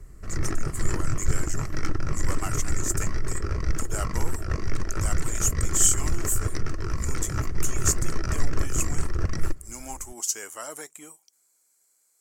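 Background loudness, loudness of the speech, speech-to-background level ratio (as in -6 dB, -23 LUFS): -31.5 LUFS, -30.0 LUFS, 1.5 dB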